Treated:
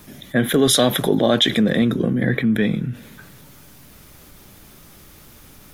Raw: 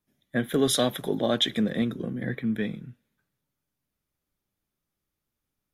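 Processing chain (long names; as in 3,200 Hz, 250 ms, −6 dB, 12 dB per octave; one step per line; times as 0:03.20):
envelope flattener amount 50%
level +6 dB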